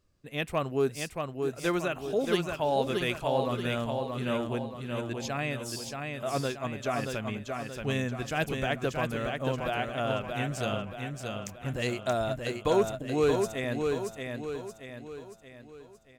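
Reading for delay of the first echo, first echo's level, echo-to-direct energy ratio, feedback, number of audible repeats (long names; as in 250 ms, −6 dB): 628 ms, −4.5 dB, −3.5 dB, 47%, 5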